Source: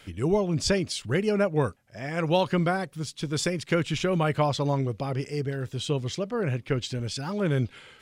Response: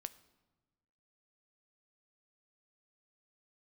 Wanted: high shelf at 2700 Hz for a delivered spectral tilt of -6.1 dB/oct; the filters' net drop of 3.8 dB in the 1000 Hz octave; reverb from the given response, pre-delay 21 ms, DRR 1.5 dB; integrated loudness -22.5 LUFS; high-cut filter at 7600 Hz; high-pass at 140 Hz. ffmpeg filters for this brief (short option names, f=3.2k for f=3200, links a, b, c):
-filter_complex "[0:a]highpass=140,lowpass=7.6k,equalizer=f=1k:t=o:g=-4,highshelf=f=2.7k:g=-8,asplit=2[a][b];[1:a]atrim=start_sample=2205,adelay=21[c];[b][c]afir=irnorm=-1:irlink=0,volume=2.5dB[d];[a][d]amix=inputs=2:normalize=0,volume=4.5dB"